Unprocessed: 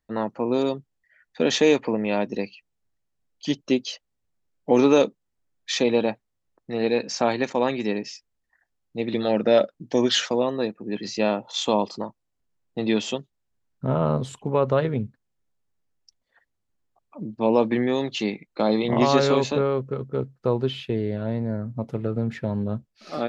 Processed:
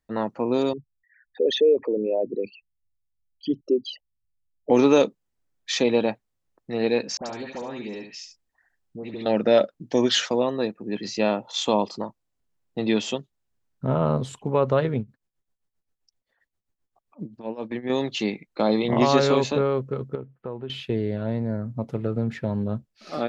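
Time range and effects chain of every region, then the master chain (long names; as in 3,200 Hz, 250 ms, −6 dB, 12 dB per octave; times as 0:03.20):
0:00.73–0:04.70: spectral envelope exaggerated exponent 3 + low-pass filter 4,100 Hz
0:07.17–0:09.26: downward compressor 2.5 to 1, threshold −34 dBFS + all-pass dispersion highs, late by 93 ms, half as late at 1,600 Hz + single-tap delay 71 ms −8 dB
0:14.99–0:17.90: downward compressor 12 to 1, threshold −22 dBFS + amplitude tremolo 7.6 Hz, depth 84%
0:20.15–0:20.70: inverse Chebyshev low-pass filter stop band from 5,800 Hz + downward compressor 2 to 1, threshold −36 dBFS + low-shelf EQ 66 Hz −10.5 dB
whole clip: no processing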